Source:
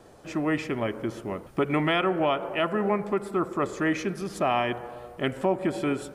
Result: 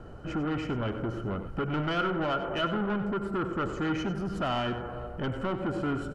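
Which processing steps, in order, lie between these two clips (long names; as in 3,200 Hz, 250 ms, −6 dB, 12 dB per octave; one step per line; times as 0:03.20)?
RIAA equalisation playback
notch filter 3,400 Hz, Q 7
dynamic equaliser 6,600 Hz, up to +5 dB, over −51 dBFS, Q 0.95
in parallel at −1.5 dB: downward compressor, threshold −28 dBFS, peak gain reduction 13 dB
on the sum: soft clipping −21 dBFS, distortion −8 dB
hollow resonant body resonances 1,400/3,000 Hz, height 15 dB, ringing for 25 ms
on a send: single-tap delay 95 ms −11.5 dB
on the sum: level −6 dB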